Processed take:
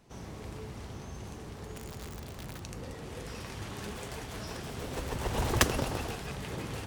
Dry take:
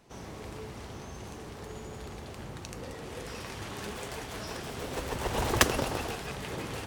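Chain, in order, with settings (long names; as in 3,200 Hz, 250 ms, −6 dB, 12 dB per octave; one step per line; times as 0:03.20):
0:01.76–0:02.61: wrap-around overflow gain 34.5 dB
bass and treble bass +5 dB, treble +1 dB
level −3 dB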